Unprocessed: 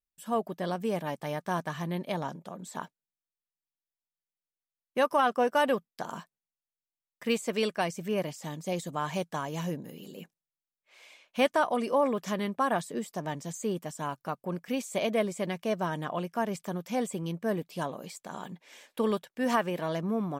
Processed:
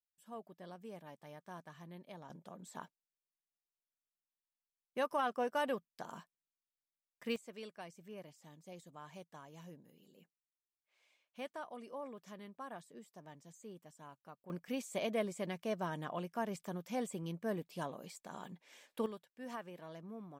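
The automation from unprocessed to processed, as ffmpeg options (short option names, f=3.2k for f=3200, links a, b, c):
-af "asetnsamples=n=441:p=0,asendcmd='2.3 volume volume -10dB;7.36 volume volume -20dB;14.5 volume volume -8dB;19.06 volume volume -18.5dB',volume=-19dB"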